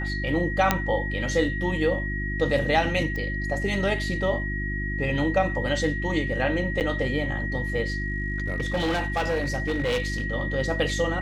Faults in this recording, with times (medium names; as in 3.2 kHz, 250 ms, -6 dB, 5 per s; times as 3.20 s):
hum 50 Hz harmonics 7 -30 dBFS
whine 1.9 kHz -31 dBFS
0.71 s: pop -4 dBFS
3.16 s: pop -21 dBFS
6.80–6.81 s: dropout 8.5 ms
7.88–10.26 s: clipped -21 dBFS